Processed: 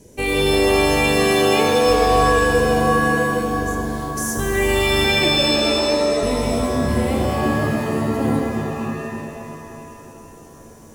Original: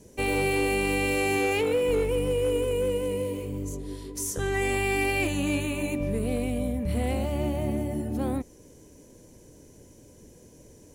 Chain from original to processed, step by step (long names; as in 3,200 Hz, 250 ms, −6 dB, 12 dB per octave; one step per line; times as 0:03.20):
0:05.04–0:06.23: loudspeaker in its box 330–3,100 Hz, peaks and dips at 350 Hz +6 dB, 570 Hz +9 dB, 1,600 Hz +9 dB
bucket-brigade delay 291 ms, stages 1,024, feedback 65%, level −13 dB
reverb with rising layers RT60 2.4 s, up +7 semitones, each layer −2 dB, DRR 3 dB
level +4.5 dB